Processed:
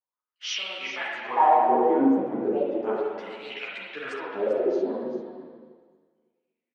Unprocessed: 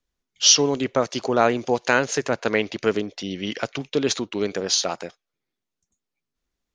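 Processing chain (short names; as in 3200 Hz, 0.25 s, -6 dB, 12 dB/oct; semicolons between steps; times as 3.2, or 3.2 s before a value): trilling pitch shifter +5 st, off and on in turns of 0.194 s; tilt shelf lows +3.5 dB, about 1300 Hz; AGC gain up to 5 dB; in parallel at -4 dB: bit-crush 6-bit; on the sum: wah 0.35 Hz 270–2500 Hz, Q 7.4; on a send: echo 0.394 s -12 dB; on the sum: spring tank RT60 1.6 s, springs 37/41 ms, chirp 35 ms, DRR -3.5 dB; ensemble effect; gain +2 dB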